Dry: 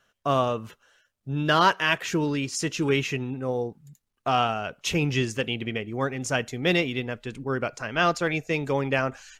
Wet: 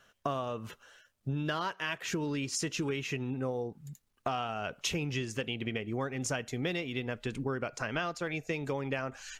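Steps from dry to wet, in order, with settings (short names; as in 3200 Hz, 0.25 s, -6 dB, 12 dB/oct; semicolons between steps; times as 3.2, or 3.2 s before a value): compressor 12:1, threshold -34 dBFS, peak gain reduction 20 dB; gain +3.5 dB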